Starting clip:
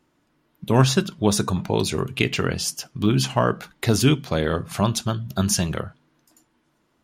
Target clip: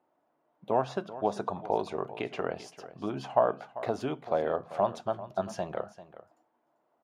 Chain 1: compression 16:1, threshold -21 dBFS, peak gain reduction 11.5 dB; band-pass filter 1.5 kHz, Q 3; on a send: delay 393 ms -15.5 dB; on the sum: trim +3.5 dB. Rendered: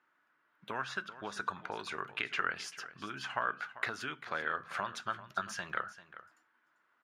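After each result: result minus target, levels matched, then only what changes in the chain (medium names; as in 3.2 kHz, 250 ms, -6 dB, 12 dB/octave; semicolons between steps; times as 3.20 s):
2 kHz band +15.0 dB; compression: peak gain reduction +6 dB
change: band-pass filter 700 Hz, Q 3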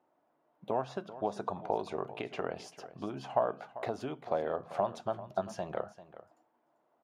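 compression: peak gain reduction +6 dB
change: compression 16:1, threshold -14.5 dBFS, peak gain reduction 5.5 dB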